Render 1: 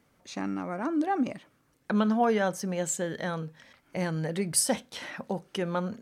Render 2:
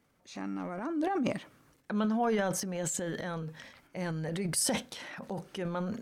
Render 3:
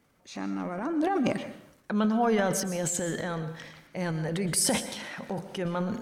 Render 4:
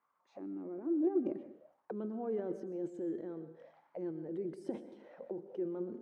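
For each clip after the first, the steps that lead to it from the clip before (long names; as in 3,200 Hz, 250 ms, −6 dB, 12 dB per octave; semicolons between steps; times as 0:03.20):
transient designer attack −2 dB, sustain +11 dB; level −5 dB
dense smooth reverb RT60 0.65 s, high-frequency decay 0.85×, pre-delay 105 ms, DRR 11 dB; level +4 dB
envelope filter 350–1,100 Hz, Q 6.6, down, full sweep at −31.5 dBFS; level +1 dB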